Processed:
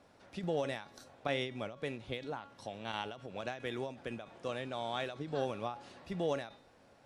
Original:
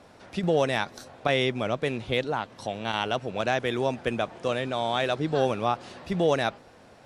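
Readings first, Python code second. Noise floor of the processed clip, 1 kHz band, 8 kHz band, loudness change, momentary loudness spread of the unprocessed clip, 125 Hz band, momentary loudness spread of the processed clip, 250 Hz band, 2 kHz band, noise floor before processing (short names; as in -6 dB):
-63 dBFS, -12.5 dB, -12.0 dB, -12.0 dB, 7 LU, -12.0 dB, 9 LU, -11.5 dB, -13.0 dB, -53 dBFS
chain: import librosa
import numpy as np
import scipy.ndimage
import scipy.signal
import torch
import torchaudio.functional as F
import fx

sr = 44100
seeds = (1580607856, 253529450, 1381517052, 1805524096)

y = fx.comb_fb(x, sr, f0_hz=280.0, decay_s=0.4, harmonics='all', damping=0.0, mix_pct=60)
y = fx.end_taper(y, sr, db_per_s=120.0)
y = F.gain(torch.from_numpy(y), -3.5).numpy()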